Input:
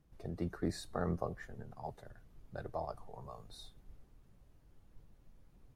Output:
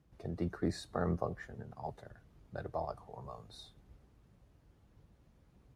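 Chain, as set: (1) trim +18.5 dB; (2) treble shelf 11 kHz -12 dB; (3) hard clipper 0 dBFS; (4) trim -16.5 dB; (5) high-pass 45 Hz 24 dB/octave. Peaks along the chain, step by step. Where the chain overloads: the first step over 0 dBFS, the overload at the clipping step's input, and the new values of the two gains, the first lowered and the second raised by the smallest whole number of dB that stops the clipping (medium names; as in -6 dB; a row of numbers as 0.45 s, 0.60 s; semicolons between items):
-2.5 dBFS, -2.5 dBFS, -2.5 dBFS, -19.0 dBFS, -19.5 dBFS; nothing clips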